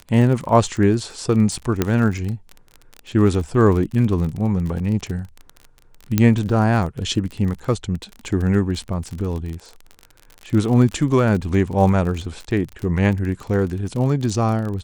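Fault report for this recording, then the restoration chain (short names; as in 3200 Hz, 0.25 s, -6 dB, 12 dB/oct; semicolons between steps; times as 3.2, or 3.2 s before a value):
crackle 34/s -26 dBFS
1.82 pop -4 dBFS
6.18 pop -3 dBFS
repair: de-click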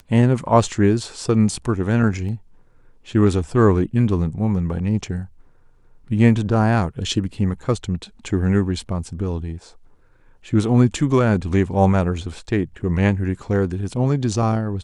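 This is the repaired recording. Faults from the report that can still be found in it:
none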